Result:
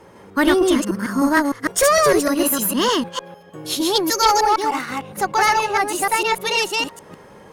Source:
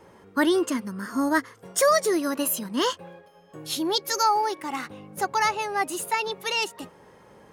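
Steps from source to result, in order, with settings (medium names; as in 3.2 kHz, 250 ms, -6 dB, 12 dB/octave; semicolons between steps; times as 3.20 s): chunks repeated in reverse 152 ms, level -1 dB; Chebyshev shaper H 2 -11 dB, 5 -21 dB, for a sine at -7 dBFS; trim +2.5 dB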